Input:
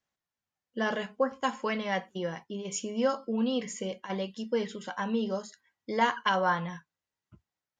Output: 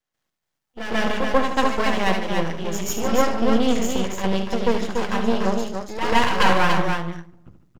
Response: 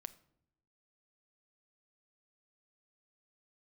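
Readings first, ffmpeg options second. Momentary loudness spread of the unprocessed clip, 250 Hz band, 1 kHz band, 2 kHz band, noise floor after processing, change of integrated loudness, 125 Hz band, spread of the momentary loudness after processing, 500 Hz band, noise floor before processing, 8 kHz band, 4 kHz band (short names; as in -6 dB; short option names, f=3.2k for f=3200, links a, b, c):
10 LU, +9.5 dB, +9.0 dB, +9.5 dB, -81 dBFS, +9.0 dB, +12.0 dB, 9 LU, +8.5 dB, under -85 dBFS, +9.0 dB, +10.5 dB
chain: -filter_complex "[0:a]bandreject=f=50:t=h:w=6,bandreject=f=100:t=h:w=6,bandreject=f=150:t=h:w=6,bandreject=f=200:t=h:w=6,asplit=2[a][b];[1:a]atrim=start_sample=2205,lowshelf=f=170:g=5.5,adelay=139[c];[b][c]afir=irnorm=-1:irlink=0,volume=12.5dB[d];[a][d]amix=inputs=2:normalize=0,aeval=exprs='max(val(0),0)':c=same,aecho=1:1:72.89|288.6:0.355|0.562,volume=3.5dB"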